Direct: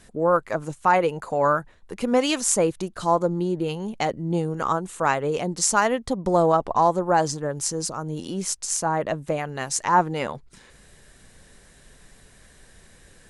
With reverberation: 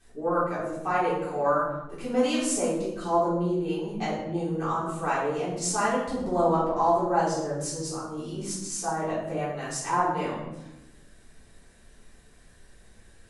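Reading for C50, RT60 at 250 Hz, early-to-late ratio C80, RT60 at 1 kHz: 2.0 dB, 1.5 s, 5.0 dB, 0.85 s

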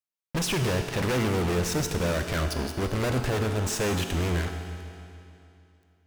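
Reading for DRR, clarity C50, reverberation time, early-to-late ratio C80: 5.0 dB, 6.0 dB, 2.7 s, 7.0 dB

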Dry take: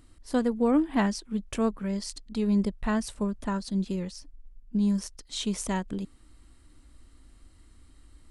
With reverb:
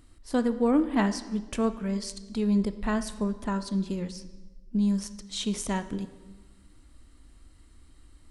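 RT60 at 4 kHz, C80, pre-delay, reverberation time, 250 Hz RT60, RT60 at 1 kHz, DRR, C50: 1.0 s, 15.0 dB, 16 ms, 1.2 s, 1.3 s, 1.1 s, 11.0 dB, 13.0 dB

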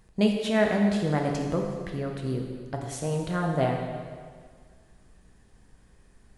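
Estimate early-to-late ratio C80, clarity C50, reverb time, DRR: 4.5 dB, 3.5 dB, 1.8 s, 1.0 dB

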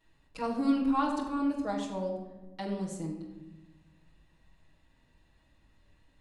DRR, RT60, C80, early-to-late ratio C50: -6.5 dB, 1.1 s, 7.5 dB, 4.5 dB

